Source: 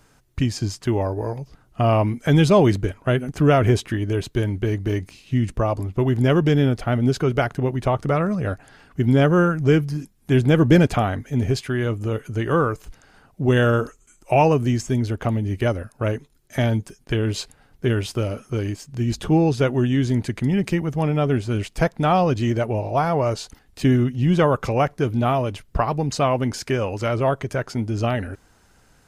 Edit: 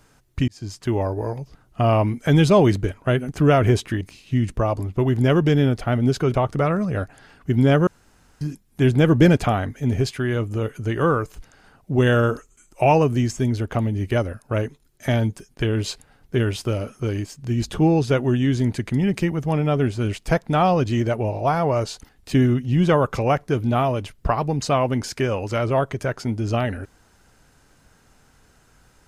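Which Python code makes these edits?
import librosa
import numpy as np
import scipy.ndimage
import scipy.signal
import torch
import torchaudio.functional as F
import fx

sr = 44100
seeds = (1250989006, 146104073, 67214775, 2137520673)

y = fx.edit(x, sr, fx.fade_in_span(start_s=0.48, length_s=0.62, curve='qsin'),
    fx.cut(start_s=4.01, length_s=1.0),
    fx.cut(start_s=7.34, length_s=0.5),
    fx.room_tone_fill(start_s=9.37, length_s=0.54), tone=tone)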